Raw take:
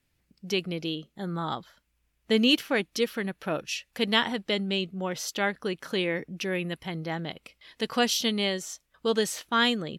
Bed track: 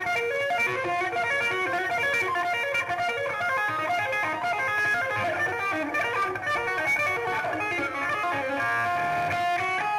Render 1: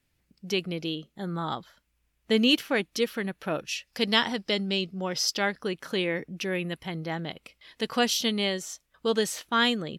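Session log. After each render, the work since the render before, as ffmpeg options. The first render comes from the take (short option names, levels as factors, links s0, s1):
-filter_complex "[0:a]asettb=1/sr,asplit=3[s0][s1][s2];[s0]atrim=end=3.874[s3];[s1]atrim=start=3.87:end=5.62,asetpts=PTS-STARTPTS,afade=t=in:d=0.004:c=qsin,afade=t=out:st=1.746:d=0.004:c=qsin,equalizer=f=5100:w=4.4:g=14.5[s4];[s2]atrim=start=5.616[s5];[s3][s4]acrossfade=d=0.004:c1=hsin:c2=qsin[s6];[s6][s5]acrossfade=d=0.004:c1=qsin:c2=hsin"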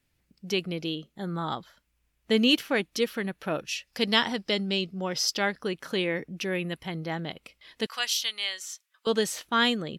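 -filter_complex "[0:a]asettb=1/sr,asplit=3[s0][s1][s2];[s0]atrim=end=7.864[s3];[s1]atrim=start=7.86:end=9.07,asetpts=PTS-STARTPTS,afade=t=in:d=0.004:c=qsin,afade=t=out:st=1.206:d=0.004:c=qsin,highpass=1400[s4];[s2]atrim=start=9.066[s5];[s3][s4]acrossfade=d=0.004:c1=hsin:c2=qsin[s6];[s6][s5]acrossfade=d=0.004:c1=qsin:c2=hsin"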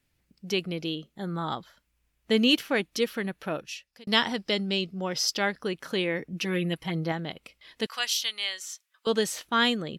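-filter_complex "[0:a]asettb=1/sr,asplit=3[s0][s1][s2];[s0]atrim=end=6.324[s3];[s1]atrim=start=6.32:end=7.12,asetpts=PTS-STARTPTS,afade=t=in:d=0.004:c=qsin,afade=t=out:st=0.796:d=0.004:c=qsin,aecho=1:1:6.2:0.78,atrim=end_sample=35280[s4];[s2]atrim=start=7.116[s5];[s3][s4]acrossfade=d=0.004:c1=hsin:c2=qsin[s6];[s6][s5]acrossfade=d=0.004:c1=qsin:c2=hsin,asplit=2[s7][s8];[s7]atrim=end=4.07,asetpts=PTS-STARTPTS,afade=t=out:st=3.4:d=0.67[s9];[s8]atrim=start=4.07,asetpts=PTS-STARTPTS,afade=t=in:d=0.004:c=hsin[s10];[s9][s10]concat=n=2:v=0:a=1"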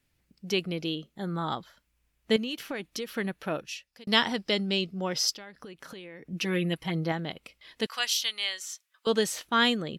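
-filter_complex "[0:a]asettb=1/sr,asplit=3[s0][s1][s2];[s0]atrim=end=2.364[s3];[s1]atrim=start=2.36:end=3.09,asetpts=PTS-STARTPTS,afade=t=in:d=0.004:c=qsin,afade=t=out:st=0.726:d=0.004:c=qsin,acompressor=threshold=0.0316:ratio=8:attack=3.2:release=140:knee=1:detection=peak[s4];[s2]atrim=start=3.086[s5];[s3][s4]acrossfade=d=0.004:c1=hsin:c2=qsin[s6];[s6][s5]acrossfade=d=0.004:c1=qsin:c2=hsin,asplit=3[s7][s8][s9];[s7]afade=t=out:st=5.34:d=0.02[s10];[s8]acompressor=threshold=0.01:ratio=16:attack=3.2:release=140:knee=1:detection=peak,afade=t=in:st=5.34:d=0.02,afade=t=out:st=6.29:d=0.02[s11];[s9]afade=t=in:st=6.29:d=0.02[s12];[s10][s11][s12]amix=inputs=3:normalize=0"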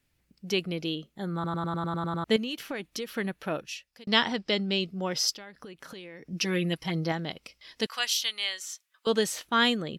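-filter_complex "[0:a]asettb=1/sr,asplit=3[s0][s1][s2];[s0]atrim=end=4.064[s3];[s1]atrim=start=4.06:end=4.81,asetpts=PTS-STARTPTS,afade=t=in:d=0.004:c=qsin,afade=t=out:st=0.746:d=0.004:c=qsin,lowpass=6500[s4];[s2]atrim=start=4.806[s5];[s3][s4]acrossfade=d=0.004:c1=hsin:c2=qsin[s6];[s6][s5]acrossfade=d=0.004:c1=qsin:c2=hsin,asettb=1/sr,asplit=3[s7][s8][s9];[s7]atrim=end=5.944[s10];[s8]atrim=start=5.94:end=7.85,asetpts=PTS-STARTPTS,afade=t=in:d=0.004:c=qsin,afade=t=out:st=1.906:d=0.004:c=qsin,equalizer=f=5300:t=o:w=0.49:g=10[s11];[s9]atrim=start=7.846[s12];[s10][s11]acrossfade=d=0.004:c1=hsin:c2=qsin[s13];[s13][s12]acrossfade=d=0.004:c1=qsin:c2=hsin,asplit=10[s14][s15][s16][s17][s18][s19][s20][s21][s22][s23];[s14]atrim=end=1.442[s24];[s15]atrim=start=1.338:end=1.442[s25];[s16]atrim=start=1.338:end=1.442[s26];[s17]atrim=start=1.338:end=1.442[s27];[s18]atrim=start=1.338:end=1.442[s28];[s19]atrim=start=1.338:end=1.442[s29];[s20]atrim=start=1.338:end=1.442[s30];[s21]atrim=start=1.338:end=1.442[s31];[s22]atrim=start=1.338:end=1.442[s32];[s23]atrim=start=2.238[s33];[s24][s25]acrossfade=d=0.004:c1=hsin:c2=hsin[s34];[s34][s26]acrossfade=d=0.004:c1=hsin:c2=hsin[s35];[s35][s27]acrossfade=d=0.004:c1=hsin:c2=hsin[s36];[s36][s28]acrossfade=d=0.004:c1=hsin:c2=hsin[s37];[s37][s29]acrossfade=d=0.004:c1=hsin:c2=hsin[s38];[s38][s30]acrossfade=d=0.004:c1=hsin:c2=hsin[s39];[s39][s31]acrossfade=d=0.004:c1=hsin:c2=hsin[s40];[s40][s32]acrossfade=d=0.004:c1=hsin:c2=hsin[s41];[s41][s33]acrossfade=d=0.004:c1=hsin:c2=hsin"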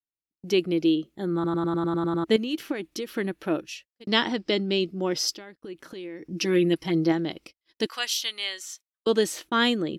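-af "equalizer=f=330:w=2.9:g=13.5,agate=range=0.0141:threshold=0.00562:ratio=16:detection=peak"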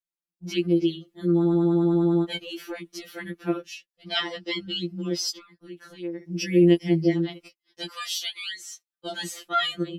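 -af "afftfilt=real='re*2.83*eq(mod(b,8),0)':imag='im*2.83*eq(mod(b,8),0)':win_size=2048:overlap=0.75"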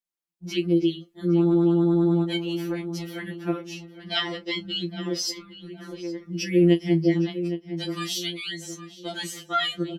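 -filter_complex "[0:a]asplit=2[s0][s1];[s1]adelay=30,volume=0.2[s2];[s0][s2]amix=inputs=2:normalize=0,asplit=2[s3][s4];[s4]adelay=813,lowpass=f=1700:p=1,volume=0.299,asplit=2[s5][s6];[s6]adelay=813,lowpass=f=1700:p=1,volume=0.38,asplit=2[s7][s8];[s8]adelay=813,lowpass=f=1700:p=1,volume=0.38,asplit=2[s9][s10];[s10]adelay=813,lowpass=f=1700:p=1,volume=0.38[s11];[s3][s5][s7][s9][s11]amix=inputs=5:normalize=0"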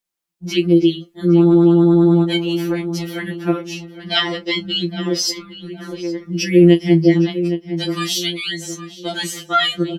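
-af "volume=2.66,alimiter=limit=0.891:level=0:latency=1"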